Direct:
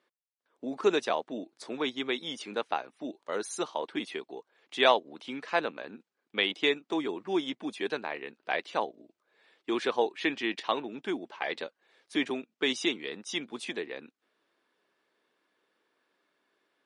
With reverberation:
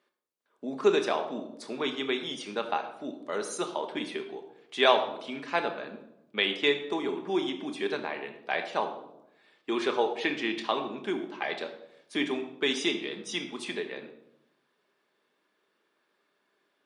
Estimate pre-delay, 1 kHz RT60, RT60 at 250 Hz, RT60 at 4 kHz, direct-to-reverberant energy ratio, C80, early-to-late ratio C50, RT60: 5 ms, 0.75 s, 1.1 s, 0.55 s, 5.0 dB, 11.5 dB, 9.5 dB, 0.85 s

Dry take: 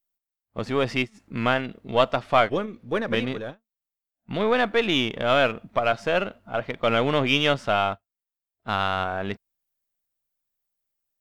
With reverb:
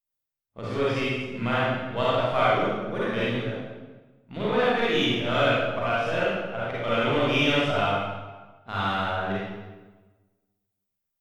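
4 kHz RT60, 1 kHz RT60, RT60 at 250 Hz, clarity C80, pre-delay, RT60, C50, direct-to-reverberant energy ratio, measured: 0.95 s, 1.2 s, 1.4 s, −0.5 dB, 37 ms, 1.3 s, −5.5 dB, −9.0 dB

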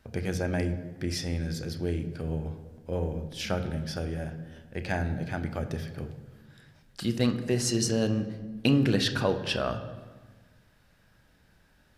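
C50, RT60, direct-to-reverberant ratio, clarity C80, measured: 11.0 dB, 1.4 s, 8.0 dB, 12.5 dB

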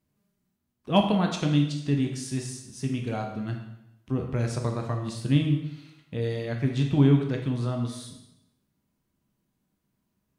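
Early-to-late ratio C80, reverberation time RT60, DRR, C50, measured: 8.0 dB, 0.85 s, 2.0 dB, 6.0 dB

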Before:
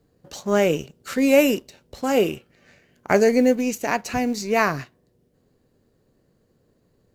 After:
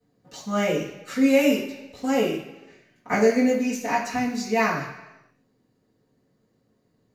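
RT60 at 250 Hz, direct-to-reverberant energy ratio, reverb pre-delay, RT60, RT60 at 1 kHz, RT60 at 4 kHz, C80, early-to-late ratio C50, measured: 0.95 s, −12.5 dB, 3 ms, 1.0 s, 1.0 s, 0.95 s, 7.5 dB, 5.5 dB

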